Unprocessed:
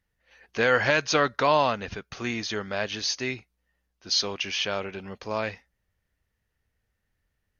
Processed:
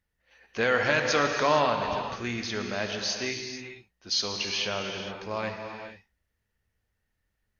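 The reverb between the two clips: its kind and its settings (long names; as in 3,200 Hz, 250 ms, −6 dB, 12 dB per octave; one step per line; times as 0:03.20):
reverb whose tail is shaped and stops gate 490 ms flat, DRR 3 dB
level −3 dB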